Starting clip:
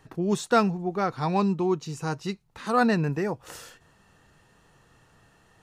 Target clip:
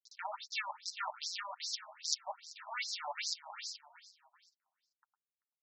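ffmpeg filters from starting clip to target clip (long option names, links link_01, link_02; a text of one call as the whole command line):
ffmpeg -i in.wav -filter_complex "[0:a]acrusher=bits=5:dc=4:mix=0:aa=0.000001,adynamicequalizer=threshold=0.0112:dfrequency=1600:dqfactor=1.3:tfrequency=1600:tqfactor=1.3:attack=5:release=100:ratio=0.375:range=2:mode=cutabove:tftype=bell,aeval=exprs='abs(val(0))':channel_layout=same,asplit=4[link_01][link_02][link_03][link_04];[link_02]adelay=387,afreqshift=73,volume=-23.5dB[link_05];[link_03]adelay=774,afreqshift=146,volume=-30.8dB[link_06];[link_04]adelay=1161,afreqshift=219,volume=-38.2dB[link_07];[link_01][link_05][link_06][link_07]amix=inputs=4:normalize=0,flanger=delay=6.6:depth=4:regen=-24:speed=1.8:shape=sinusoidal,equalizer=frequency=5200:width=2.5:gain=10,aecho=1:1:2.2:0.4,areverse,acompressor=threshold=-32dB:ratio=12,areverse,afftfilt=real='re*between(b*sr/1024,820*pow(5800/820,0.5+0.5*sin(2*PI*2.5*pts/sr))/1.41,820*pow(5800/820,0.5+0.5*sin(2*PI*2.5*pts/sr))*1.41)':imag='im*between(b*sr/1024,820*pow(5800/820,0.5+0.5*sin(2*PI*2.5*pts/sr))/1.41,820*pow(5800/820,0.5+0.5*sin(2*PI*2.5*pts/sr))*1.41)':win_size=1024:overlap=0.75,volume=9dB" out.wav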